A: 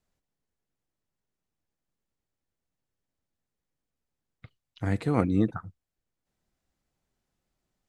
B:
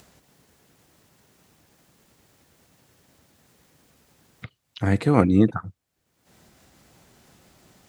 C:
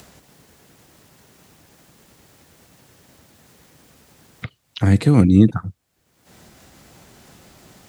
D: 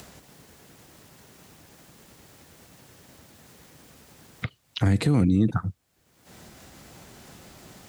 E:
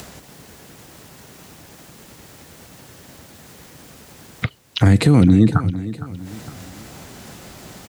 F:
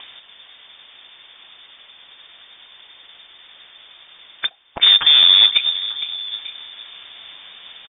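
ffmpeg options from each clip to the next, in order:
ffmpeg -i in.wav -filter_complex "[0:a]asplit=2[link_01][link_02];[link_02]acompressor=mode=upward:threshold=-33dB:ratio=2.5,volume=-1.5dB[link_03];[link_01][link_03]amix=inputs=2:normalize=0,highpass=79,volume=2dB" out.wav
ffmpeg -i in.wav -filter_complex "[0:a]acrossover=split=290|3000[link_01][link_02][link_03];[link_02]acompressor=threshold=-35dB:ratio=4[link_04];[link_01][link_04][link_03]amix=inputs=3:normalize=0,volume=8dB" out.wav
ffmpeg -i in.wav -af "alimiter=limit=-12.5dB:level=0:latency=1:release=68" out.wav
ffmpeg -i in.wav -af "aecho=1:1:460|920|1380|1840:0.178|0.0729|0.0299|0.0123,volume=8.5dB" out.wav
ffmpeg -i in.wav -af "aecho=1:1:893:0.106,acrusher=bits=3:mode=log:mix=0:aa=0.000001,lowpass=frequency=3100:width_type=q:width=0.5098,lowpass=frequency=3100:width_type=q:width=0.6013,lowpass=frequency=3100:width_type=q:width=0.9,lowpass=frequency=3100:width_type=q:width=2.563,afreqshift=-3700" out.wav

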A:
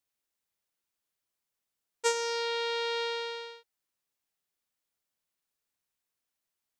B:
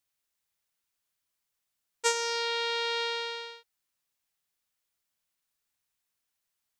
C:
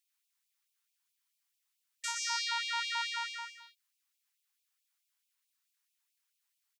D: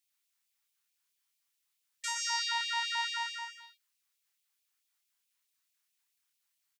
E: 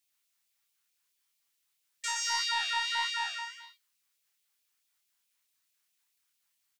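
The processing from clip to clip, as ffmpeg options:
ffmpeg -i in.wav -af "equalizer=frequency=380:width_type=o:width=2.2:gain=-5.5,volume=3.5dB" out.wav
ffmpeg -i in.wav -af "alimiter=limit=-19.5dB:level=0:latency=1:release=213,aecho=1:1:120:0.422,afftfilt=real='re*gte(b*sr/1024,740*pow(2300/740,0.5+0.5*sin(2*PI*4.6*pts/sr)))':imag='im*gte(b*sr/1024,740*pow(2300/740,0.5+0.5*sin(2*PI*4.6*pts/sr)))':win_size=1024:overlap=0.75" out.wav
ffmpeg -i in.wav -filter_complex "[0:a]asplit=2[link_01][link_02];[link_02]adelay=29,volume=-4dB[link_03];[link_01][link_03]amix=inputs=2:normalize=0" out.wav
ffmpeg -i in.wav -filter_complex "[0:a]asplit=2[link_01][link_02];[link_02]asoftclip=type=tanh:threshold=-29dB,volume=-9dB[link_03];[link_01][link_03]amix=inputs=2:normalize=0,flanger=delay=9.4:depth=9.3:regen=66:speed=1.6:shape=sinusoidal,volume=4.5dB" out.wav

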